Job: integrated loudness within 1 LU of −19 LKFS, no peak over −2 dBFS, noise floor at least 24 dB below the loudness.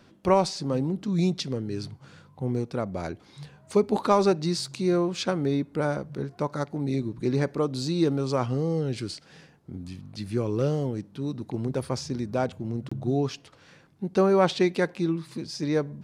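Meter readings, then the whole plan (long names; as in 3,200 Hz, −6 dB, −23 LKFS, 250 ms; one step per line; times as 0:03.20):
number of dropouts 1; longest dropout 25 ms; integrated loudness −27.5 LKFS; sample peak −7.5 dBFS; target loudness −19.0 LKFS
→ repair the gap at 0:12.89, 25 ms
level +8.5 dB
brickwall limiter −2 dBFS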